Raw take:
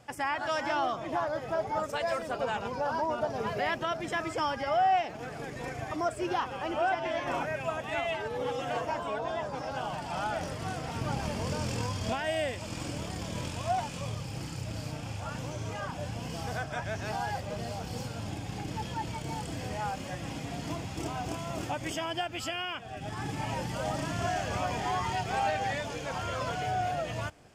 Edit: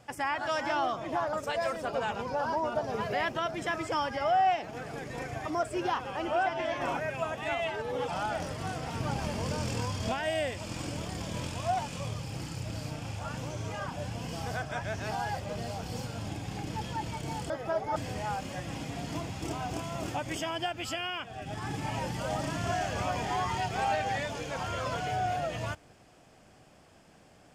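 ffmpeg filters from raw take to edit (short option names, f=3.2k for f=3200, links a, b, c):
-filter_complex "[0:a]asplit=5[a][b][c][d][e];[a]atrim=end=1.332[f];[b]atrim=start=1.788:end=8.542[g];[c]atrim=start=10.088:end=19.512[h];[d]atrim=start=1.328:end=1.792[i];[e]atrim=start=19.508[j];[f][g]acrossfade=d=0.004:c1=hsin:c2=hsin[k];[k][h]acrossfade=d=0.004:c1=hsin:c2=hsin[l];[l][i]acrossfade=d=0.004:c1=hsin:c2=hsin[m];[m][j]acrossfade=d=0.004:c1=hsin:c2=hsin"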